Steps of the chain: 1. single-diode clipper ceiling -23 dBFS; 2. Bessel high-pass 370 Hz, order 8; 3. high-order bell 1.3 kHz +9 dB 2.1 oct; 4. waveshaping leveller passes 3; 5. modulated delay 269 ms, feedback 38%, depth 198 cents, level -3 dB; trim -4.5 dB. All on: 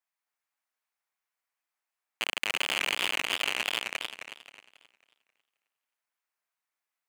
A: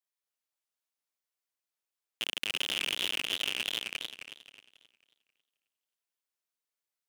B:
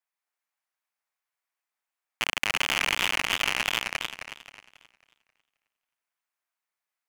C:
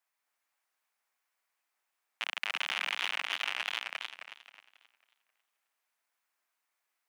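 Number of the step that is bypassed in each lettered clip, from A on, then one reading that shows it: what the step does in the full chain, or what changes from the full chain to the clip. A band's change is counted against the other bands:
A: 3, 1 kHz band -8.0 dB; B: 1, 125 Hz band +6.0 dB; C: 4, 250 Hz band -10.5 dB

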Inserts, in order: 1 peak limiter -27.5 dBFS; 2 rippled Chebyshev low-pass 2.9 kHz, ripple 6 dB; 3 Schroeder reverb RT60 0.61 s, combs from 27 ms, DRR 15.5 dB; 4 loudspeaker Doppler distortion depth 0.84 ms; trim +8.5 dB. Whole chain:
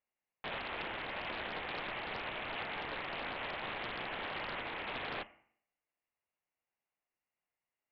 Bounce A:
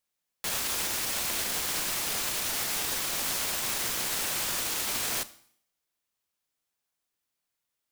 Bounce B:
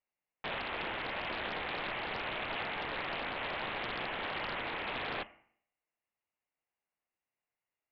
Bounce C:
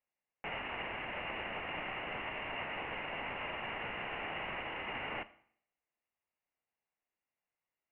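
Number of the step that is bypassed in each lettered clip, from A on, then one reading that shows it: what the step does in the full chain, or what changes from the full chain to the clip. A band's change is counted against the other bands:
2, 4 kHz band +8.0 dB; 1, mean gain reduction 3.0 dB; 4, 4 kHz band -2.0 dB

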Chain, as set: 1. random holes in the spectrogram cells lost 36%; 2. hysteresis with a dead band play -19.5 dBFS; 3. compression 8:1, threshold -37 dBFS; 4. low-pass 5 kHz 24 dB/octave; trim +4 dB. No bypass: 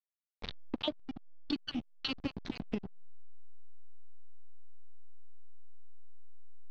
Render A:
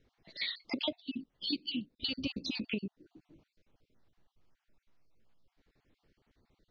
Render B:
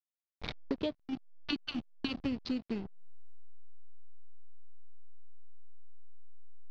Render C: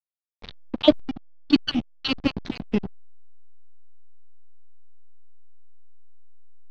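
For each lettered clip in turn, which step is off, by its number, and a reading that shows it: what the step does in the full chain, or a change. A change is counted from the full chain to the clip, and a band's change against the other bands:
2, distortion -3 dB; 1, 4 kHz band -4.0 dB; 3, mean gain reduction 3.0 dB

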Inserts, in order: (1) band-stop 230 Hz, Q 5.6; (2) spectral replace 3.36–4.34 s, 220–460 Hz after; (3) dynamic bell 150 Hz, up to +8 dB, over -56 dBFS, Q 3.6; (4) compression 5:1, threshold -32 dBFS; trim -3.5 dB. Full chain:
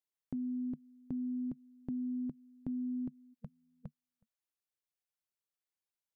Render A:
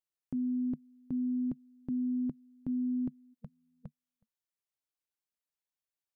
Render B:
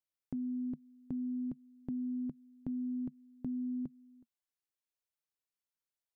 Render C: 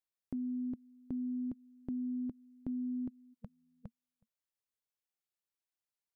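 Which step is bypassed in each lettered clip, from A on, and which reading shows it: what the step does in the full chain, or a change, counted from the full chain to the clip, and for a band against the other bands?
4, mean gain reduction 3.0 dB; 2, momentary loudness spread change -10 LU; 3, momentary loudness spread change +2 LU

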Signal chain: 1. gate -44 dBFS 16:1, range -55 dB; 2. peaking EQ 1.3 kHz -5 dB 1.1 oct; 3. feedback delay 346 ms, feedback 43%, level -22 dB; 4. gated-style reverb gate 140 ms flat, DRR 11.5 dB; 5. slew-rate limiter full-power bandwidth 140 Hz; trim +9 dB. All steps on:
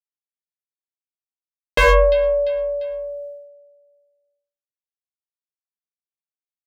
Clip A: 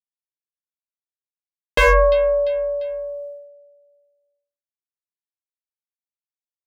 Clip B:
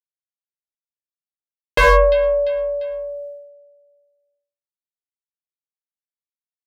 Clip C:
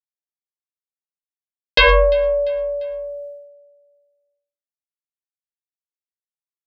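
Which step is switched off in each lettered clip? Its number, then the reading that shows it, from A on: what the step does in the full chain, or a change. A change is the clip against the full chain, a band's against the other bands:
4, 4 kHz band -2.0 dB; 2, 1 kHz band +2.5 dB; 5, distortion -9 dB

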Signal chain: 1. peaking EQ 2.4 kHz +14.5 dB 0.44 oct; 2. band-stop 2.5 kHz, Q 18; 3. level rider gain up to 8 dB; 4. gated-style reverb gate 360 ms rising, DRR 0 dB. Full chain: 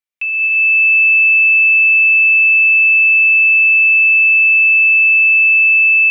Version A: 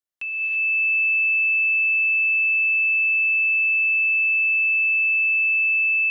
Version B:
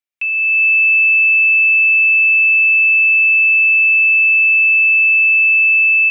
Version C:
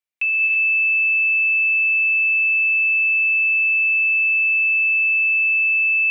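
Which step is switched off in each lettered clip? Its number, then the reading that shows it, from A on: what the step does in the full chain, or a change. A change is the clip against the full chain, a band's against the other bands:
1, loudness change -10.0 LU; 4, loudness change -1.5 LU; 3, momentary loudness spread change -1 LU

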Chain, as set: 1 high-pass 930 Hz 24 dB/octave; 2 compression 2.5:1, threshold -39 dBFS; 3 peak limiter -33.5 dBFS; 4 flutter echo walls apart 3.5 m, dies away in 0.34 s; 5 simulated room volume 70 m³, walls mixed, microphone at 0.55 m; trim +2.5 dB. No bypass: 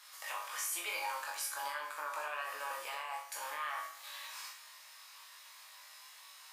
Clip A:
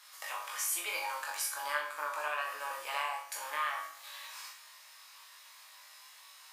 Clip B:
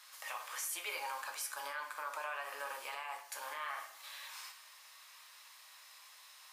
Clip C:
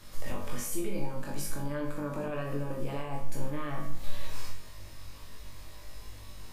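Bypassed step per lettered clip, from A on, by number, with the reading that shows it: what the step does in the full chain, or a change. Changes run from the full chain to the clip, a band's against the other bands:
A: 3, crest factor change +3.0 dB; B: 4, echo-to-direct 2.0 dB to -3.0 dB; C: 1, 500 Hz band +15.0 dB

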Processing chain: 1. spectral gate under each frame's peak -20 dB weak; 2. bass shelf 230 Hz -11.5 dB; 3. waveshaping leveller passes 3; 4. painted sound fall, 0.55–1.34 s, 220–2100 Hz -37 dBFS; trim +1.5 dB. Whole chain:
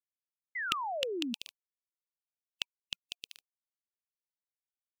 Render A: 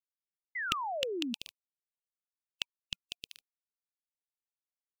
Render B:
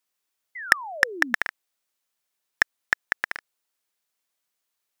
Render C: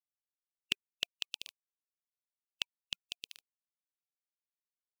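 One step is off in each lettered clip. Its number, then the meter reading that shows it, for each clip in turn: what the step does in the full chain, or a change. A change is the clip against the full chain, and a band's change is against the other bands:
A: 2, 125 Hz band +5.0 dB; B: 1, 2 kHz band +16.5 dB; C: 4, 1 kHz band -20.0 dB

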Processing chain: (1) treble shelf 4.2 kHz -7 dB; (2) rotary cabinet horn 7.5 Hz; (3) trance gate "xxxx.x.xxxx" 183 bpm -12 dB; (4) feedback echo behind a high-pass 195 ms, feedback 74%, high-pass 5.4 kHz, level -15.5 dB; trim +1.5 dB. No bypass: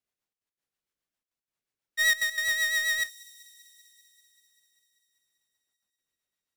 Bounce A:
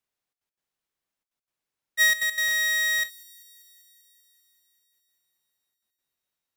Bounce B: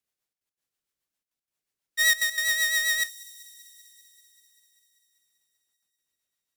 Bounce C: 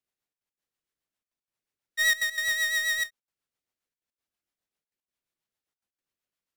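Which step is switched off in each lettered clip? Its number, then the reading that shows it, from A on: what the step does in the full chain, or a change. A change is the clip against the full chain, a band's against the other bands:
2, crest factor change -2.5 dB; 1, 8 kHz band +4.5 dB; 4, echo-to-direct -30.5 dB to none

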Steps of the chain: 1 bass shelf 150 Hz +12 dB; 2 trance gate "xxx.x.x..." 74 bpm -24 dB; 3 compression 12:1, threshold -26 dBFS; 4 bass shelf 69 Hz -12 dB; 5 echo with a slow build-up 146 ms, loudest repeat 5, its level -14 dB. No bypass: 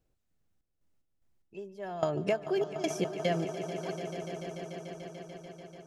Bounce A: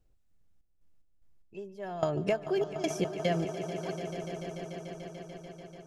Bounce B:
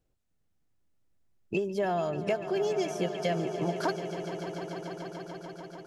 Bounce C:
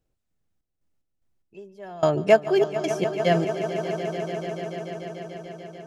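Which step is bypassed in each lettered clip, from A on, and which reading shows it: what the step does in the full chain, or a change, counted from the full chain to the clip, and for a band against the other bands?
4, 125 Hz band +2.0 dB; 2, 8 kHz band -3.0 dB; 3, mean gain reduction 4.5 dB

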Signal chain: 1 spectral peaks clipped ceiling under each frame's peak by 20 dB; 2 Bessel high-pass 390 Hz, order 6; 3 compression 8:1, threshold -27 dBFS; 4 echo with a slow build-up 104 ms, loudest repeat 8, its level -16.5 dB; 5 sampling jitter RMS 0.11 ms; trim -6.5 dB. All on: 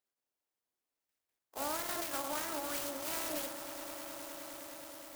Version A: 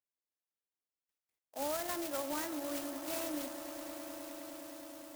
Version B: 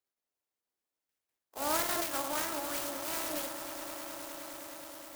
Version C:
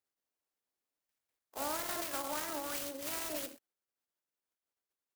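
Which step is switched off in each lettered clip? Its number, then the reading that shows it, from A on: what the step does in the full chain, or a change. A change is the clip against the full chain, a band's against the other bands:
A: 1, 250 Hz band +8.0 dB; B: 3, mean gain reduction 2.5 dB; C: 4, momentary loudness spread change -5 LU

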